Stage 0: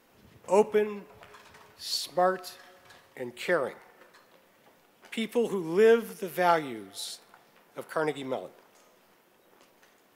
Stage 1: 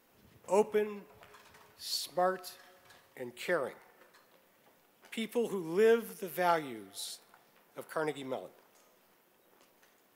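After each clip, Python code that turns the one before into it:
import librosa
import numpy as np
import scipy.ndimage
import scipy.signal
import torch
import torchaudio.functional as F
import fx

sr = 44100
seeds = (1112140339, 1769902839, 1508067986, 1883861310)

y = fx.high_shelf(x, sr, hz=11000.0, db=8.0)
y = F.gain(torch.from_numpy(y), -5.5).numpy()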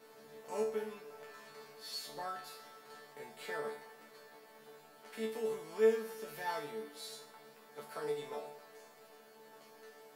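y = fx.bin_compress(x, sr, power=0.6)
y = fx.resonator_bank(y, sr, root=50, chord='fifth', decay_s=0.38)
y = F.gain(torch.from_numpy(y), 3.5).numpy()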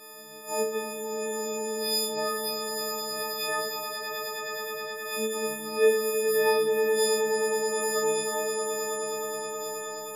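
y = fx.freq_snap(x, sr, grid_st=6)
y = fx.echo_swell(y, sr, ms=105, loudest=8, wet_db=-6.0)
y = F.gain(torch.from_numpy(y), 6.5).numpy()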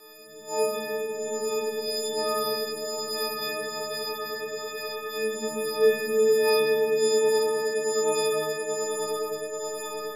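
y = fx.rotary(x, sr, hz=1.2)
y = fx.room_shoebox(y, sr, seeds[0], volume_m3=3200.0, walls='mixed', distance_m=3.5)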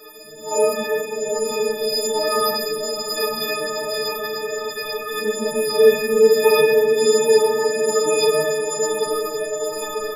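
y = fx.phase_scramble(x, sr, seeds[1], window_ms=100)
y = F.gain(torch.from_numpy(y), 7.0).numpy()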